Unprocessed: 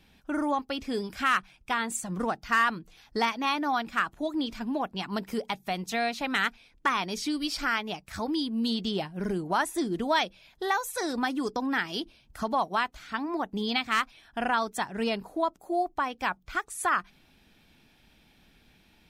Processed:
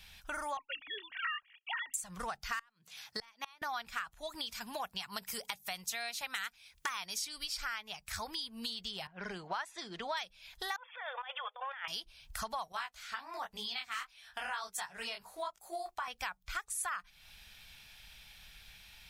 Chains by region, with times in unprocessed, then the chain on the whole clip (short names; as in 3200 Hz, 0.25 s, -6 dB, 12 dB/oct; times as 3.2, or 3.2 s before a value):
0.57–1.94 sine-wave speech + bell 300 Hz -11 dB 2.7 oct + small resonant body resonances 1900/2800 Hz, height 10 dB, ringing for 20 ms
2.59–3.62 HPF 130 Hz 24 dB/oct + flipped gate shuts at -19 dBFS, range -30 dB
4.35–7.25 HPF 62 Hz + high shelf 5800 Hz +8.5 dB
9.07–10.17 low-pass opened by the level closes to 1600 Hz, open at -23 dBFS + three-band isolator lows -19 dB, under 190 Hz, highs -18 dB, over 5300 Hz
10.76–11.88 brick-wall FIR band-pass 470–3600 Hz + negative-ratio compressor -41 dBFS
12.72–16.08 low shelf 170 Hz -10 dB + detuned doubles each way 37 cents
whole clip: passive tone stack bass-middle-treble 10-0-10; compressor 4:1, threshold -48 dBFS; dynamic EQ 3200 Hz, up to -3 dB, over -60 dBFS, Q 0.88; gain +11 dB